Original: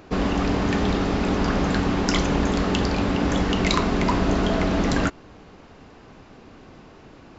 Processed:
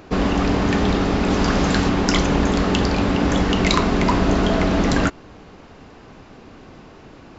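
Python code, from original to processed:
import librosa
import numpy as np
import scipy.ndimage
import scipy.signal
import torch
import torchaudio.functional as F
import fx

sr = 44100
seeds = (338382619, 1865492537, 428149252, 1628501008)

y = fx.high_shelf(x, sr, hz=fx.line((1.29, 5200.0), (1.88, 3500.0)), db=7.5, at=(1.29, 1.88), fade=0.02)
y = y * 10.0 ** (3.5 / 20.0)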